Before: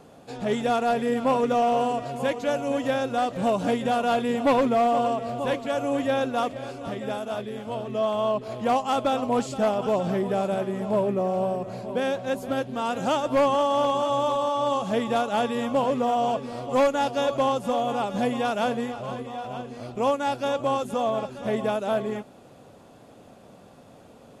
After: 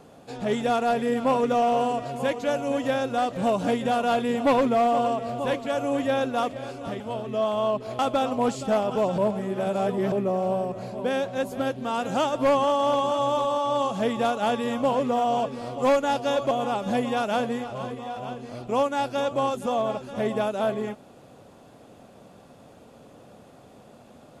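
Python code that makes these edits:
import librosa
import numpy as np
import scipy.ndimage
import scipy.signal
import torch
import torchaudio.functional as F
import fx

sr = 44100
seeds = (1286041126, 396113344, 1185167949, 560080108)

y = fx.edit(x, sr, fx.cut(start_s=7.0, length_s=0.61),
    fx.cut(start_s=8.6, length_s=0.3),
    fx.reverse_span(start_s=10.09, length_s=0.94),
    fx.cut(start_s=17.42, length_s=0.37), tone=tone)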